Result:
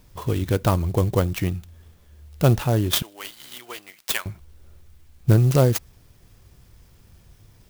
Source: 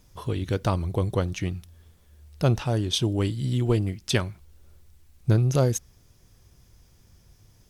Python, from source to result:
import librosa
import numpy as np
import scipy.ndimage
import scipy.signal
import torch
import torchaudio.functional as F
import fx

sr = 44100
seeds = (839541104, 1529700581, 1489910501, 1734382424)

y = fx.highpass(x, sr, hz=1400.0, slope=12, at=(3.02, 4.26))
y = fx.clock_jitter(y, sr, seeds[0], jitter_ms=0.038)
y = y * librosa.db_to_amplitude(4.5)